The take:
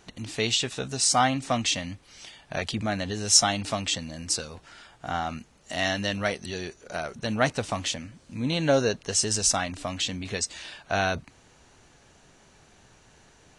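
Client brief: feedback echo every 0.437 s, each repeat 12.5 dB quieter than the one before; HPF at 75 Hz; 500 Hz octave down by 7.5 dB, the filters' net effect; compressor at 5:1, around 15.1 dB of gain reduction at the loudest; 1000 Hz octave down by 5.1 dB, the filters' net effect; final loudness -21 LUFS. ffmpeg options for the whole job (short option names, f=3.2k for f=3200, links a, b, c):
-af "highpass=75,equalizer=f=500:t=o:g=-8.5,equalizer=f=1k:t=o:g=-3.5,acompressor=threshold=-31dB:ratio=5,aecho=1:1:437|874|1311:0.237|0.0569|0.0137,volume=14dB"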